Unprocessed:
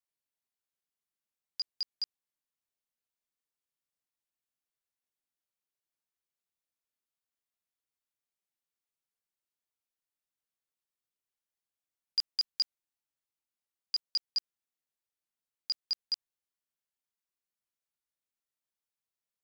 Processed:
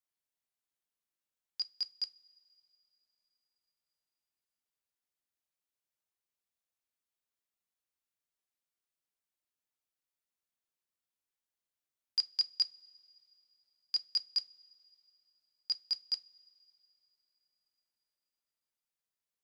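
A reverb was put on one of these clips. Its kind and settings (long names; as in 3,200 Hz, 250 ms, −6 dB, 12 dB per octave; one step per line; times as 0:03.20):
coupled-rooms reverb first 0.24 s, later 3.7 s, from −22 dB, DRR 13.5 dB
level −1.5 dB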